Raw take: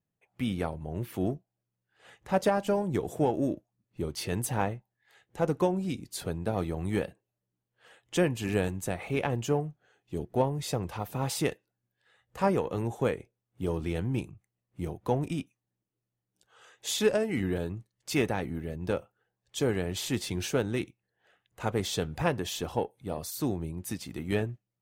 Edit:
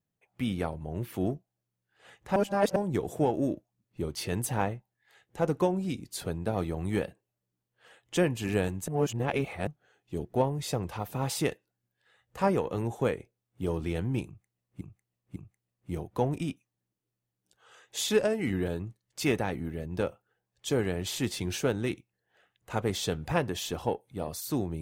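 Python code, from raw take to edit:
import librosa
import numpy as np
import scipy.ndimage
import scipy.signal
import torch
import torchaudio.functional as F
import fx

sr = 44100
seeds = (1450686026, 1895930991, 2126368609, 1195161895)

y = fx.edit(x, sr, fx.reverse_span(start_s=2.36, length_s=0.4),
    fx.reverse_span(start_s=8.88, length_s=0.79),
    fx.repeat(start_s=14.26, length_s=0.55, count=3), tone=tone)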